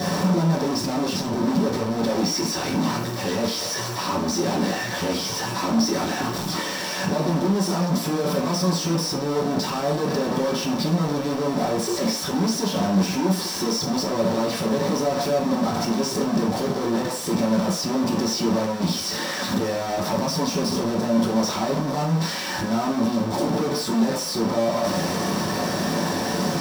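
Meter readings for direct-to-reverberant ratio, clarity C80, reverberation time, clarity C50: -6.5 dB, 11.5 dB, 0.45 s, 8.0 dB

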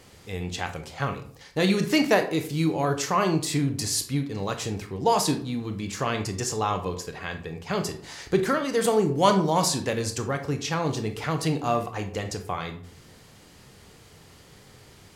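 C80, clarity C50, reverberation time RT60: 15.5 dB, 11.0 dB, 0.50 s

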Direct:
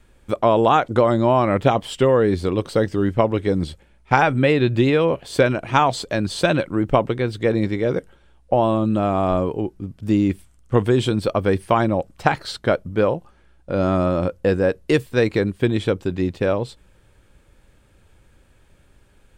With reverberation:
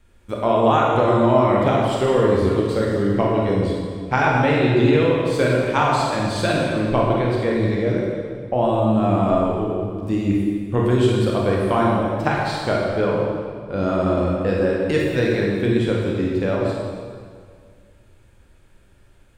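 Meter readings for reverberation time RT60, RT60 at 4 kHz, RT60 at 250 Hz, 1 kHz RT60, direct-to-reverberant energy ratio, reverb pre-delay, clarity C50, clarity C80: 2.0 s, 1.6 s, 2.1 s, 2.0 s, -3.5 dB, 22 ms, -1.0 dB, 0.5 dB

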